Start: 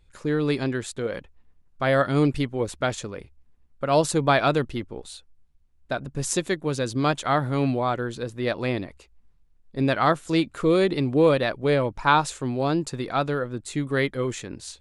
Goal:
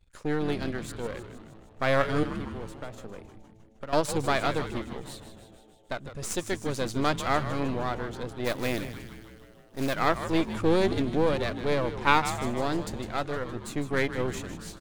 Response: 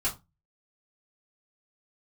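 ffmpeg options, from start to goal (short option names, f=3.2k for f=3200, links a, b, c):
-filter_complex "[0:a]aeval=exprs='if(lt(val(0),0),0.251*val(0),val(0))':c=same,tremolo=f=0.57:d=0.34,asettb=1/sr,asplit=3[a][b][c];[a]atrim=end=2.234[d];[b]atrim=start=2.23:end=3.93,asetpts=PTS-STARTPTS,afade=t=in:d=0.004:c=qsin,afade=t=out:st=1.696:d=0.004:c=qsin,acrossover=split=210|1500[e][f][g];[e]acompressor=threshold=-42dB:ratio=4[h];[f]acompressor=threshold=-40dB:ratio=4[i];[g]acompressor=threshold=-53dB:ratio=4[j];[h][i][j]amix=inputs=3:normalize=0[k];[c]atrim=start=3.926[l];[d][k]acrossfade=d=0.004:c1=hsin:c2=qsin[m];[m][l]acrossfade=d=0.004:c1=qsin:c2=hsin,asplit=3[n][o][p];[n]afade=t=out:st=8.44:d=0.02[q];[o]acrusher=bits=3:mode=log:mix=0:aa=0.000001,afade=t=in:st=8.44:d=0.02,afade=t=out:st=9.93:d=0.02[r];[p]afade=t=in:st=9.93:d=0.02[s];[q][r][s]amix=inputs=3:normalize=0,asplit=2[t][u];[u]asplit=8[v][w][x][y][z][aa][ab][ac];[v]adelay=155,afreqshift=-110,volume=-11dB[ad];[w]adelay=310,afreqshift=-220,volume=-14.9dB[ae];[x]adelay=465,afreqshift=-330,volume=-18.8dB[af];[y]adelay=620,afreqshift=-440,volume=-22.6dB[ag];[z]adelay=775,afreqshift=-550,volume=-26.5dB[ah];[aa]adelay=930,afreqshift=-660,volume=-30.4dB[ai];[ab]adelay=1085,afreqshift=-770,volume=-34.3dB[aj];[ac]adelay=1240,afreqshift=-880,volume=-38.1dB[ak];[ad][ae][af][ag][ah][ai][aj][ak]amix=inputs=8:normalize=0[al];[t][al]amix=inputs=2:normalize=0"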